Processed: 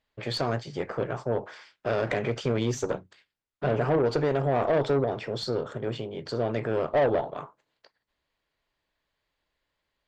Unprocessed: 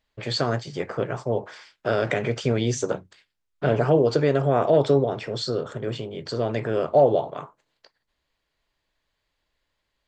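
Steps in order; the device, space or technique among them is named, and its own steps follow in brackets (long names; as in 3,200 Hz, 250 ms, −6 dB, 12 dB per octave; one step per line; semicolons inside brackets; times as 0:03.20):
tube preamp driven hard (tube saturation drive 18 dB, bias 0.4; low-shelf EQ 100 Hz −5 dB; high-shelf EQ 5,400 Hz −8 dB)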